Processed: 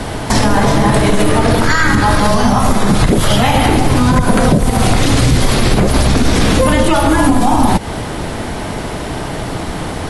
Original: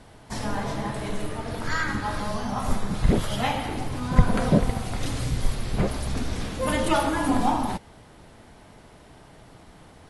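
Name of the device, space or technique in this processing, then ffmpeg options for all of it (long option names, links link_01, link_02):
mastering chain: -filter_complex "[0:a]equalizer=frequency=320:width_type=o:width=0.77:gain=2,acrossover=split=140|6700[link_01][link_02][link_03];[link_01]acompressor=threshold=-30dB:ratio=4[link_04];[link_02]acompressor=threshold=-30dB:ratio=4[link_05];[link_03]acompressor=threshold=-47dB:ratio=4[link_06];[link_04][link_05][link_06]amix=inputs=3:normalize=0,acompressor=threshold=-35dB:ratio=2,alimiter=level_in=28.5dB:limit=-1dB:release=50:level=0:latency=1,volume=-1dB"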